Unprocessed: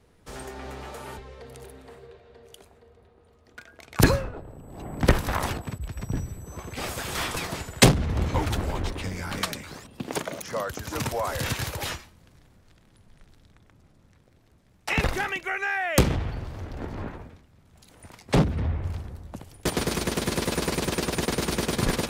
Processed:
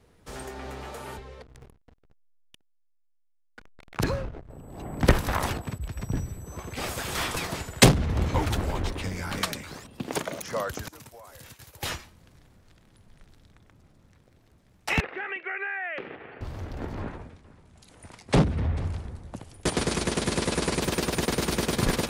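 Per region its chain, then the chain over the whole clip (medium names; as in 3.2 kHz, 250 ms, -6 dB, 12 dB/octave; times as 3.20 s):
1.42–4.50 s: hysteresis with a dead band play -33 dBFS + treble shelf 9.7 kHz -11 dB + compression 3:1, threshold -24 dBFS
10.88–11.83 s: expander -24 dBFS + treble shelf 7.7 kHz +10.5 dB + compression 16:1, threshold -43 dBFS
15.00–16.41 s: compression 4:1, threshold -30 dBFS + cabinet simulation 410–2600 Hz, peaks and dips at 410 Hz +5 dB, 620 Hz -3 dB, 970 Hz -6 dB, 1.8 kHz +4 dB, 2.6 kHz +3 dB
17.00–20.81 s: delay 442 ms -19.5 dB + careless resampling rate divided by 2×, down none, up filtered
whole clip: none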